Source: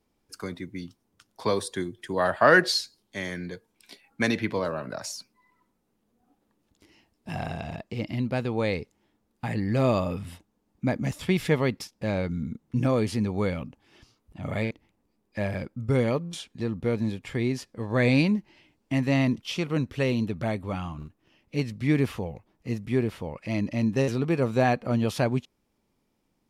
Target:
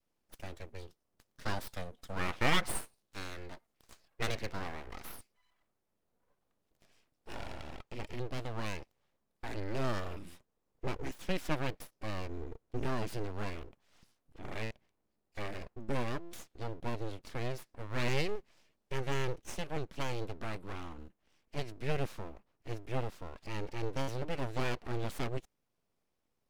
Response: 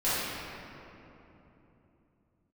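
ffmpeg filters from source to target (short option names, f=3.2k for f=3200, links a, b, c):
-af "adynamicequalizer=threshold=0.0126:dfrequency=580:dqfactor=1.2:tfrequency=580:tqfactor=1.2:attack=5:release=100:ratio=0.375:range=2:mode=cutabove:tftype=bell,aeval=exprs='abs(val(0))':c=same,volume=-7.5dB"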